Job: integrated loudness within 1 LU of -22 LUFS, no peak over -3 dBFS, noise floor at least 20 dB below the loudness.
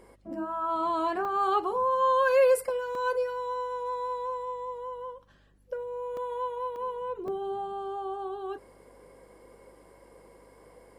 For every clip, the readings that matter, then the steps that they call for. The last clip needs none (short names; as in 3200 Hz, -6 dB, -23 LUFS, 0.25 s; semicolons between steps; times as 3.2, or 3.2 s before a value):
dropouts 5; longest dropout 1.9 ms; hum 50 Hz; harmonics up to 300 Hz; hum level -61 dBFS; loudness -29.5 LUFS; peak -14.0 dBFS; loudness target -22.0 LUFS
-> interpolate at 1.25/2.95/6.17/6.76/7.28, 1.9 ms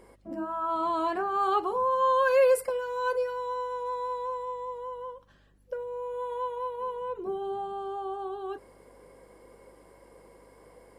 dropouts 0; hum 50 Hz; harmonics up to 300 Hz; hum level -61 dBFS
-> de-hum 50 Hz, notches 6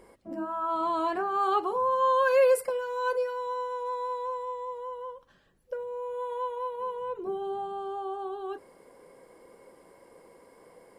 hum none; loudness -29.5 LUFS; peak -14.0 dBFS; loudness target -22.0 LUFS
-> gain +7.5 dB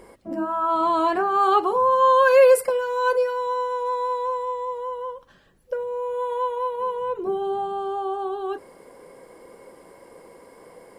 loudness -22.0 LUFS; peak -6.5 dBFS; noise floor -52 dBFS